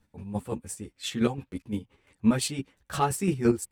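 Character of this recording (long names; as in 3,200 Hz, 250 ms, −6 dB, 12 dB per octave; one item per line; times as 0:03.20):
chopped level 5.8 Hz, depth 60%, duty 30%
a shimmering, thickened sound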